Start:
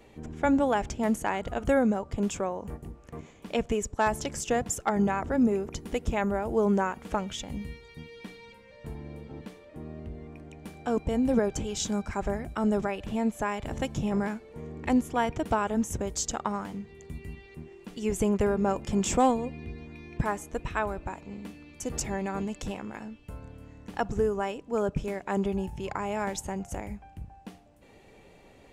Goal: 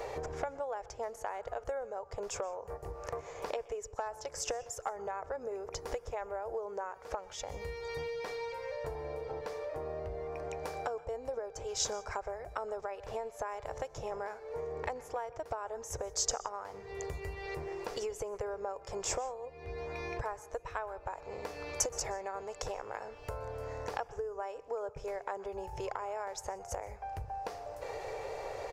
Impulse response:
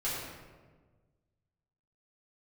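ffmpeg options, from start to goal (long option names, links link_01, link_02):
-filter_complex "[0:a]firequalizer=gain_entry='entry(120,0);entry(210,-20);entry(450,12);entry(960,10);entry(3100,-9);entry(5000,-1);entry(8900,-16)':delay=0.05:min_phase=1,acompressor=threshold=-45dB:ratio=12,crystalizer=i=4.5:c=0,asplit=2[link_01][link_02];[link_02]asuperstop=centerf=4100:order=4:qfactor=4.9[link_03];[1:a]atrim=start_sample=2205,atrim=end_sample=3087,adelay=120[link_04];[link_03][link_04]afir=irnorm=-1:irlink=0,volume=-22.5dB[link_05];[link_01][link_05]amix=inputs=2:normalize=0,volume=8dB"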